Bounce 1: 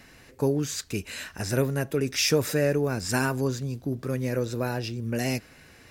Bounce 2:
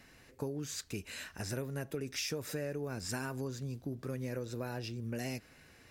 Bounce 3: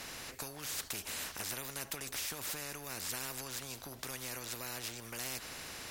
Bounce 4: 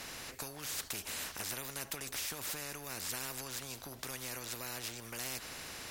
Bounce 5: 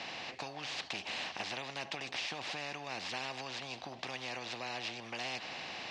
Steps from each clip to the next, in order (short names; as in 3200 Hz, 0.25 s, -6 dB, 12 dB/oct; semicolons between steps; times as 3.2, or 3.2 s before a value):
compressor 6:1, threshold -27 dBFS, peak gain reduction 10 dB; gain -7.5 dB
spectral compressor 4:1; gain +3.5 dB
nothing audible
speaker cabinet 170–4600 Hz, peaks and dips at 270 Hz -3 dB, 430 Hz -5 dB, 760 Hz +7 dB, 1400 Hz -7 dB, 2700 Hz +4 dB; gain +4 dB